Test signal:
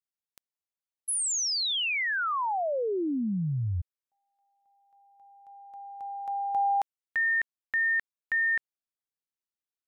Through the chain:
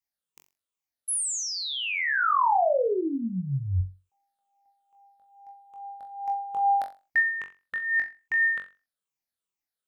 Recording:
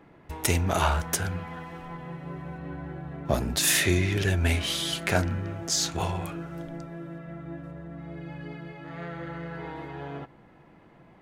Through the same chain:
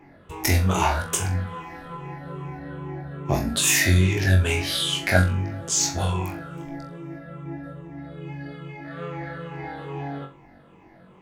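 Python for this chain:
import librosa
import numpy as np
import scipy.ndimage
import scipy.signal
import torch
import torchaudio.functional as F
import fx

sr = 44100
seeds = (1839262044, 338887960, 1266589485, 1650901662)

y = fx.spec_ripple(x, sr, per_octave=0.72, drift_hz=-2.4, depth_db=11)
y = fx.room_flutter(y, sr, wall_m=3.7, rt60_s=0.29)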